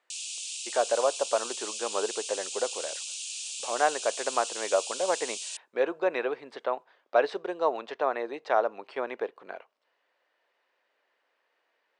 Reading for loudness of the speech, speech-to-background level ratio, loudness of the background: -30.5 LUFS, 4.0 dB, -34.5 LUFS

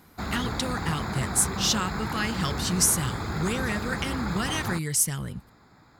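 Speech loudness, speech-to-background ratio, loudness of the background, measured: -27.0 LUFS, 5.0 dB, -32.0 LUFS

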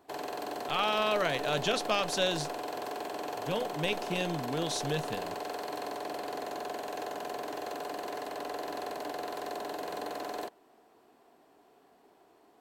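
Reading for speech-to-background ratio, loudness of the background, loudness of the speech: 6.5 dB, -38.0 LUFS, -31.5 LUFS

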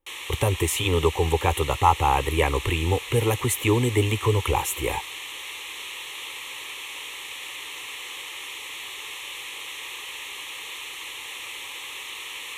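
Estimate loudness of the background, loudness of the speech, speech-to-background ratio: -34.0 LUFS, -23.5 LUFS, 10.5 dB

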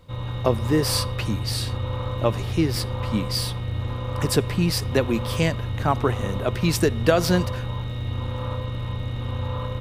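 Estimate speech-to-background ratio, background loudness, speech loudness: 4.0 dB, -29.0 LUFS, -25.0 LUFS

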